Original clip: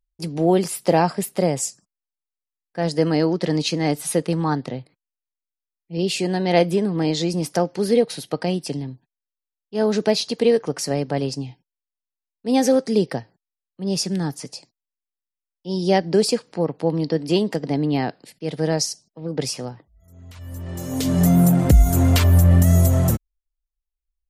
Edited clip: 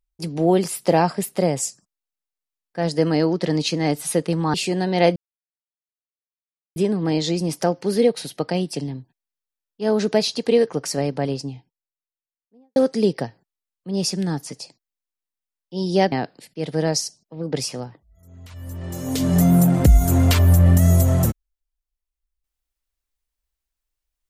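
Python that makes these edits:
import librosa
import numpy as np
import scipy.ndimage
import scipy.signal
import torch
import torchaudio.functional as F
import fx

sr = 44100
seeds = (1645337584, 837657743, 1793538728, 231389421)

y = fx.studio_fade_out(x, sr, start_s=10.93, length_s=1.76)
y = fx.edit(y, sr, fx.cut(start_s=4.54, length_s=1.53),
    fx.insert_silence(at_s=6.69, length_s=1.6),
    fx.cut(start_s=16.05, length_s=1.92), tone=tone)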